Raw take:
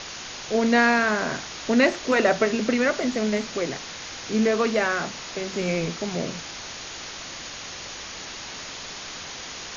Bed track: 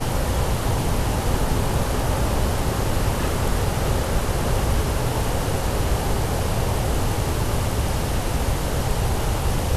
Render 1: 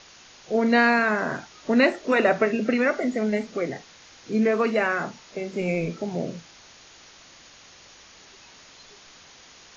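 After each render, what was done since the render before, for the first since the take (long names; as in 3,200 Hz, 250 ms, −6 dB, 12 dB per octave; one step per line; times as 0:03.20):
noise reduction from a noise print 13 dB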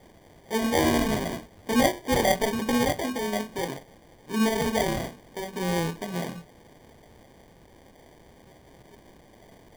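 chorus effect 0.71 Hz, delay 16.5 ms, depth 6.8 ms
decimation without filtering 33×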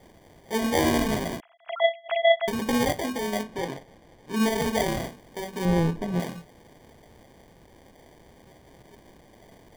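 0:01.40–0:02.48: three sine waves on the formant tracks
0:03.42–0:04.35: low-pass filter 3,600 Hz → 7,600 Hz 6 dB per octave
0:05.65–0:06.20: spectral tilt −2.5 dB per octave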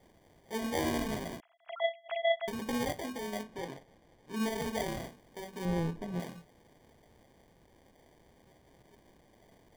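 level −9.5 dB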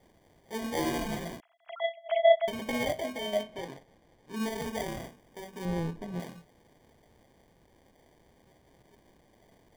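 0:00.76–0:01.32: comb filter 5.8 ms
0:01.97–0:03.61: hollow resonant body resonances 630/2,200/3,100 Hz, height 18 dB, ringing for 90 ms
0:04.65–0:05.61: notch filter 4,200 Hz, Q 9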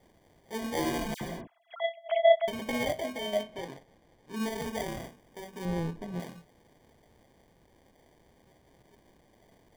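0:01.14–0:01.74: all-pass dispersion lows, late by 70 ms, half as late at 2,000 Hz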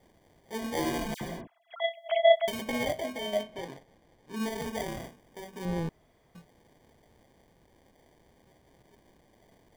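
0:01.80–0:02.62: high-shelf EQ 3,200 Hz +9 dB
0:05.89–0:06.35: fill with room tone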